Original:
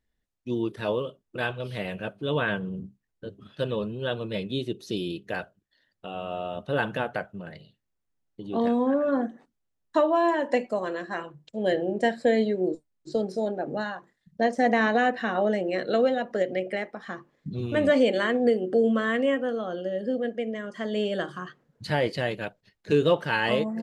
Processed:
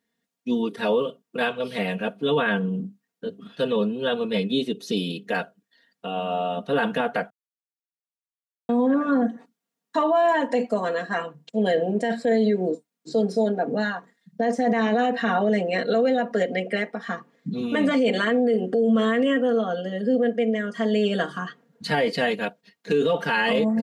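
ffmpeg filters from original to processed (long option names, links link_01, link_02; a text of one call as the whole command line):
ffmpeg -i in.wav -filter_complex "[0:a]asplit=3[link_01][link_02][link_03];[link_01]atrim=end=7.3,asetpts=PTS-STARTPTS,afade=type=out:start_time=7.296:duration=0.004:curve=hsin[link_04];[link_02]atrim=start=7.3:end=8.69,asetpts=PTS-STARTPTS,volume=0[link_05];[link_03]atrim=start=8.69,asetpts=PTS-STARTPTS,afade=type=in:duration=0.004:curve=hsin[link_06];[link_04][link_05][link_06]concat=n=3:v=0:a=1,highpass=frequency=130:width=0.5412,highpass=frequency=130:width=1.3066,aecho=1:1:4.3:0.85,alimiter=limit=-17.5dB:level=0:latency=1:release=21,volume=4dB" out.wav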